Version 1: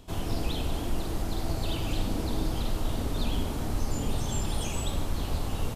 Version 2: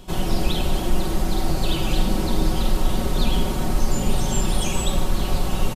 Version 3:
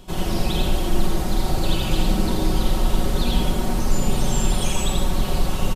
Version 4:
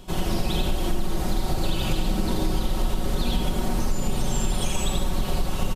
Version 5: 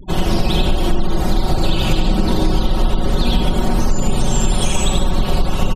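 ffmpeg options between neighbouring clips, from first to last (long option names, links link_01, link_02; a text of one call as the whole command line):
ffmpeg -i in.wav -af "aecho=1:1:5.4:0.65,volume=7dB" out.wav
ffmpeg -i in.wav -af "aecho=1:1:84.55|148.7:0.708|0.316,volume=-1.5dB" out.wav
ffmpeg -i in.wav -af "acompressor=threshold=-18dB:ratio=6" out.wav
ffmpeg -i in.wav -af "afftfilt=real='re*gte(hypot(re,im),0.0112)':imag='im*gte(hypot(re,im),0.0112)':win_size=1024:overlap=0.75,volume=8.5dB" out.wav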